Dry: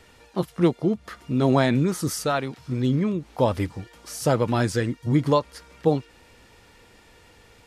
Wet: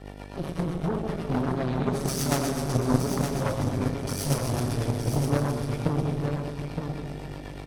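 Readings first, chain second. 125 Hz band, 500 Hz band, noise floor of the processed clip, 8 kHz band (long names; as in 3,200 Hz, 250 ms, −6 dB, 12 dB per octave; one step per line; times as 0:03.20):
−0.5 dB, −5.5 dB, −39 dBFS, +1.5 dB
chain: notch filter 7,000 Hz, Q 7.1
harmonic and percussive parts rebalanced percussive −17 dB
comb filter 7.3 ms, depth 89%
downward compressor 12 to 1, threshold −29 dBFS, peak gain reduction 18.5 dB
four-comb reverb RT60 3 s, combs from 28 ms, DRR −2 dB
hum with harmonics 50 Hz, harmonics 15, −44 dBFS −3 dB per octave
rotating-speaker cabinet horn 8 Hz
harmonic generator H 2 −7 dB, 3 −12 dB, 5 −23 dB, 8 −17 dB, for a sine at −17.5 dBFS
single-tap delay 917 ms −6.5 dB
level +8 dB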